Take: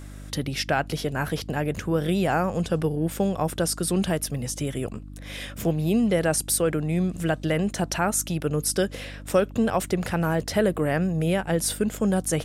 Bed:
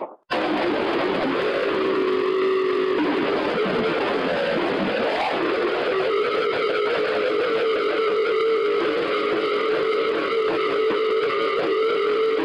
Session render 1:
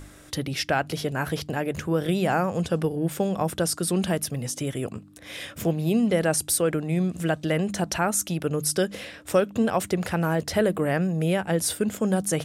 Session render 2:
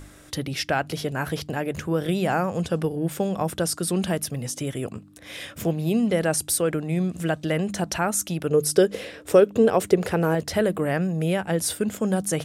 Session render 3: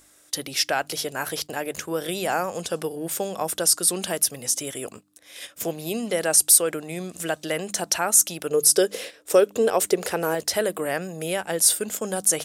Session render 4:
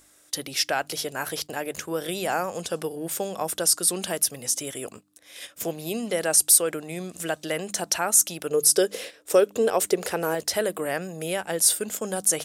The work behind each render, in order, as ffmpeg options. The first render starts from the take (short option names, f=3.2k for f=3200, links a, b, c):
-af "bandreject=f=50:t=h:w=4,bandreject=f=100:t=h:w=4,bandreject=f=150:t=h:w=4,bandreject=f=200:t=h:w=4,bandreject=f=250:t=h:w=4"
-filter_complex "[0:a]asettb=1/sr,asplit=3[a][b][c];[a]atrim=end=8.504[d];[b]atrim=start=8.5:end=10.35,asetpts=PTS-STARTPTS,afade=t=in:d=0.004:c=qsin,afade=t=out:st=1.846:d=0.004:c=qsin,equalizer=f=430:w=2.3:g=11.5[e];[c]atrim=start=10.346[f];[d][e]acrossfade=d=0.004:c1=hsin:c2=qsin[g];[g][f]acrossfade=d=0.004:c1=qsin:c2=hsin"
-af "agate=range=-10dB:threshold=-35dB:ratio=16:detection=peak,bass=f=250:g=-15,treble=f=4k:g=10"
-af "volume=-1.5dB"